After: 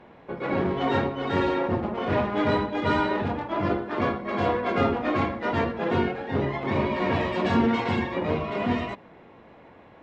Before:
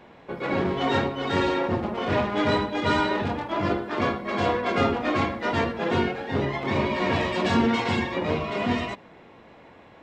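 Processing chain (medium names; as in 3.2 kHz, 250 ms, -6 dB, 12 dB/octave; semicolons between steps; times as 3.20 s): low-pass 2.2 kHz 6 dB/octave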